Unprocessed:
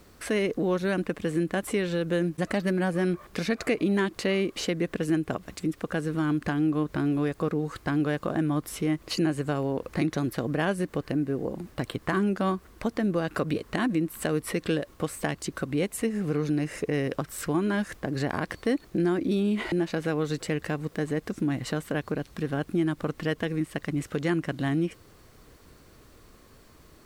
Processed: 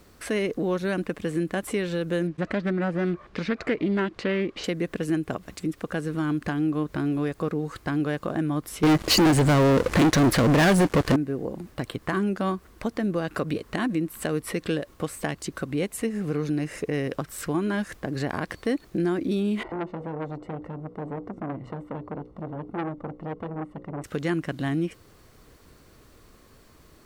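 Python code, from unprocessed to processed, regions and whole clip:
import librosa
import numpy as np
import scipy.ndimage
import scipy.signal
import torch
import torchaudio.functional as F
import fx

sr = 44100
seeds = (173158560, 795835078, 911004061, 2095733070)

y = fx.chain(x, sr, fx.lowpass(hz=3900.0, slope=12),
    fx.doppler_dist(depth_ms=0.17), at=(2.27, 4.64))
y = fx.chain(y, sr, fx.lowpass(hz=10000.0, slope=12),
    fx.leveller(passes=5), at=(8.83, 11.16))
y = fx.chain(y, sr, fx.savgol(points=65),
    fx.hum_notches(base_hz=60, count=9),
    fx.transformer_sat(knee_hz=1100.0), at=(19.63, 24.04))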